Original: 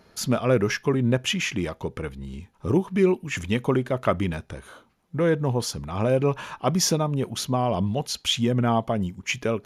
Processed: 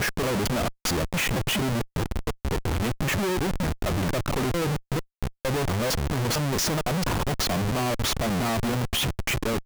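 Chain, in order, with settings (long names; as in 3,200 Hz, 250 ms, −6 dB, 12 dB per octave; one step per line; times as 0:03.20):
slices reordered back to front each 227 ms, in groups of 4
comparator with hysteresis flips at −33 dBFS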